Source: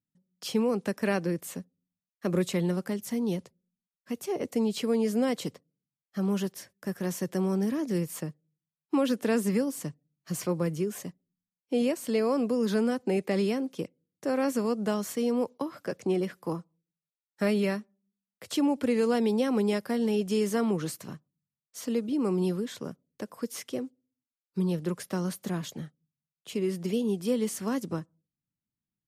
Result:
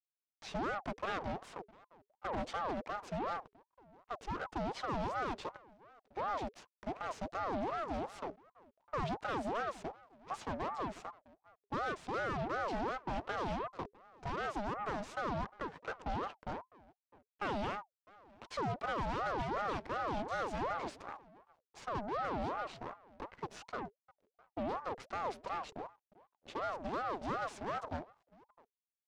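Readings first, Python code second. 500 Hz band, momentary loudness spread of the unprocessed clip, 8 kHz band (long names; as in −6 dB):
−11.5 dB, 13 LU, −18.0 dB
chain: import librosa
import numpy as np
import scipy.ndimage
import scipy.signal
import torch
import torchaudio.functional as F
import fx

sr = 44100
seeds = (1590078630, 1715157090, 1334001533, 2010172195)

p1 = 10.0 ** (-26.5 / 20.0) * np.tanh(x / 10.0 ** (-26.5 / 20.0))
p2 = p1 + fx.echo_single(p1, sr, ms=655, db=-17.5, dry=0)
p3 = fx.backlash(p2, sr, play_db=-43.0)
p4 = fx.cheby_harmonics(p3, sr, harmonics=(8,), levels_db=(-16,), full_scale_db=-26.0)
p5 = fx.air_absorb(p4, sr, metres=130.0)
p6 = fx.ring_lfo(p5, sr, carrier_hz=720.0, swing_pct=45, hz=2.7)
y = F.gain(torch.from_numpy(p6), -3.0).numpy()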